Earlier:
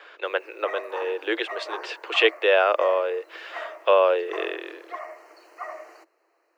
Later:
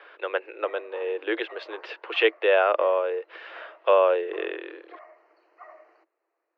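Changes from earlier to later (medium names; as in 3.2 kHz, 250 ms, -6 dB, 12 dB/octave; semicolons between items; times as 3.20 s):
background -10.0 dB; master: add distance through air 260 m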